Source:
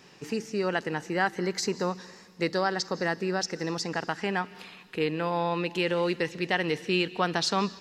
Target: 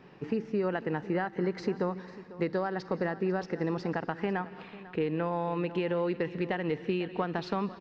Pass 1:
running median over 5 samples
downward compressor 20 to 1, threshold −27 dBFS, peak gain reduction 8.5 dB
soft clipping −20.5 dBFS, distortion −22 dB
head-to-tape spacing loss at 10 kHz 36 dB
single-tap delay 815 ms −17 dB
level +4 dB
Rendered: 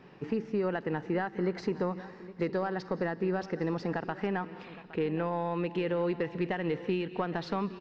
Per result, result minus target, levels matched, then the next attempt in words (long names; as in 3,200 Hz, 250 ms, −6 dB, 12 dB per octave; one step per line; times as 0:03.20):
echo 318 ms late; soft clipping: distortion +13 dB
running median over 5 samples
downward compressor 20 to 1, threshold −27 dBFS, peak gain reduction 8.5 dB
soft clipping −20.5 dBFS, distortion −22 dB
head-to-tape spacing loss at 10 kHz 36 dB
single-tap delay 497 ms −17 dB
level +4 dB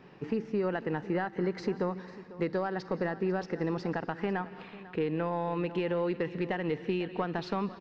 soft clipping: distortion +13 dB
running median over 5 samples
downward compressor 20 to 1, threshold −27 dBFS, peak gain reduction 8.5 dB
soft clipping −13 dBFS, distortion −34 dB
head-to-tape spacing loss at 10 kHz 36 dB
single-tap delay 497 ms −17 dB
level +4 dB